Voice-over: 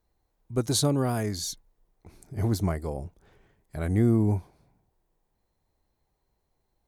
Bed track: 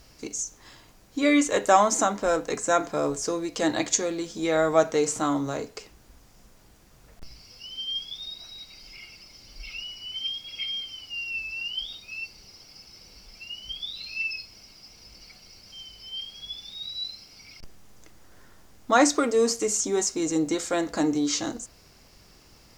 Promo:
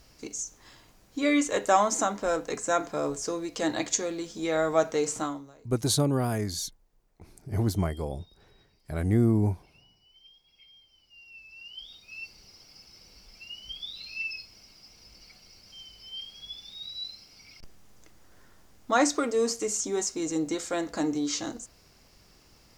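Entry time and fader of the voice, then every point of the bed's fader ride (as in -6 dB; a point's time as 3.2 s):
5.15 s, -0.5 dB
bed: 5.22 s -3.5 dB
5.56 s -25 dB
10.81 s -25 dB
12.3 s -4 dB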